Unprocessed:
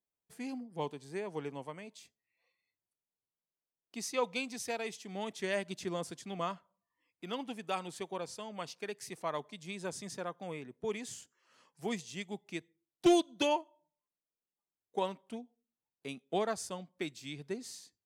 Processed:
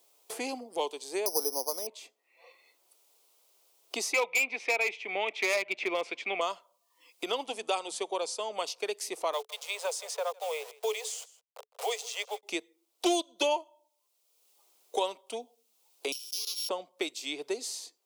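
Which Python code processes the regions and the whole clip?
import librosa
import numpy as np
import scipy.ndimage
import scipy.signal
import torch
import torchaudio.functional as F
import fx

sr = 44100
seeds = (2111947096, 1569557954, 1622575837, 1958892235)

y = fx.chain(x, sr, fx.lowpass(hz=1100.0, slope=12),
    fx.resample_bad(factor=8, down='filtered', up='zero_stuff'), at=(1.26, 1.87))
y = fx.chain(y, sr, fx.lowpass_res(hz=2300.0, q=9.2),
    fx.clip_hard(threshold_db=-25.0), at=(4.13, 6.41))
y = fx.chain(y, sr, fx.steep_lowpass(hz=11000.0, slope=72),
    fx.hum_notches(base_hz=60, count=4), at=(7.46, 8.58))
y = fx.chain(y, sr, fx.delta_hold(step_db=-53.5),
    fx.cheby1_highpass(hz=430.0, order=8),
    fx.echo_single(ms=159, db=-23.0), at=(9.33, 12.43))
y = fx.chain(y, sr, fx.sample_sort(block=8),
    fx.cheby2_highpass(hz=1800.0, order=4, stop_db=40),
    fx.env_flatten(amount_pct=70), at=(16.12, 16.69))
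y = scipy.signal.sosfilt(scipy.signal.butter(4, 400.0, 'highpass', fs=sr, output='sos'), y)
y = fx.peak_eq(y, sr, hz=1700.0, db=-12.0, octaves=0.64)
y = fx.band_squash(y, sr, depth_pct=70)
y = y * 10.0 ** (8.5 / 20.0)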